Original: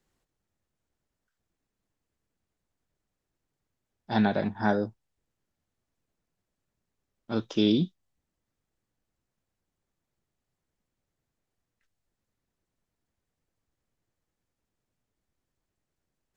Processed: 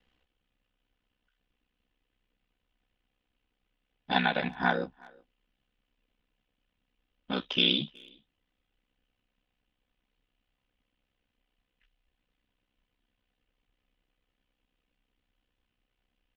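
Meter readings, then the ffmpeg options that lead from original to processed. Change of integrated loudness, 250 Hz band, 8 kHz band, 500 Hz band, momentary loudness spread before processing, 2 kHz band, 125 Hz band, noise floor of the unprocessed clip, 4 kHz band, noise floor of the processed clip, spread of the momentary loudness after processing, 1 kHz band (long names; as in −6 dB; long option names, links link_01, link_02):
−0.5 dB, −8.0 dB, can't be measured, −5.0 dB, 9 LU, +5.5 dB, −6.5 dB, −85 dBFS, +9.0 dB, −82 dBFS, 12 LU, +1.5 dB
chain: -filter_complex "[0:a]lowpass=frequency=3000:width_type=q:width=3.9,aecho=1:1:4:0.95,acrossover=split=680[link_01][link_02];[link_01]acompressor=threshold=-31dB:ratio=6[link_03];[link_03][link_02]amix=inputs=2:normalize=0,aeval=exprs='val(0)*sin(2*PI*32*n/s)':channel_layout=same,asplit=2[link_04][link_05];[link_05]adelay=370,highpass=300,lowpass=3400,asoftclip=type=hard:threshold=-20dB,volume=-25dB[link_06];[link_04][link_06]amix=inputs=2:normalize=0,volume=2dB"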